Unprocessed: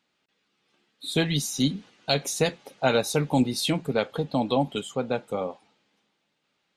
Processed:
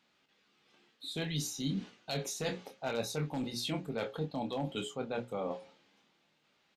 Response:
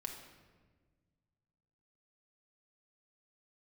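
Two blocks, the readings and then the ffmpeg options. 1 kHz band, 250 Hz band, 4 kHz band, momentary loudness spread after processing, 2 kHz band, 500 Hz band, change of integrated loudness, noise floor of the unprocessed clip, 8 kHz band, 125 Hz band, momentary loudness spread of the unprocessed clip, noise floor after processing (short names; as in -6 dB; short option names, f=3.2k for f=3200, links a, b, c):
-11.5 dB, -11.0 dB, -10.5 dB, 5 LU, -11.0 dB, -11.0 dB, -11.0 dB, -75 dBFS, -9.5 dB, -9.5 dB, 7 LU, -73 dBFS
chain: -filter_complex "[0:a]asplit=2[a][b];[b]alimiter=limit=-16.5dB:level=0:latency=1,volume=-1dB[c];[a][c]amix=inputs=2:normalize=0,aeval=exprs='0.335*(abs(mod(val(0)/0.335+3,4)-2)-1)':c=same,bandreject=f=60:t=h:w=6,bandreject=f=120:t=h:w=6,bandreject=f=180:t=h:w=6,bandreject=f=240:t=h:w=6,bandreject=f=300:t=h:w=6,bandreject=f=360:t=h:w=6,bandreject=f=420:t=h:w=6,bandreject=f=480:t=h:w=6,bandreject=f=540:t=h:w=6,areverse,acompressor=threshold=-30dB:ratio=6,areverse,equalizer=f=9.8k:w=2:g=-7,aresample=32000,aresample=44100,asplit=2[d][e];[e]adelay=26,volume=-7dB[f];[d][f]amix=inputs=2:normalize=0,volume=-4dB"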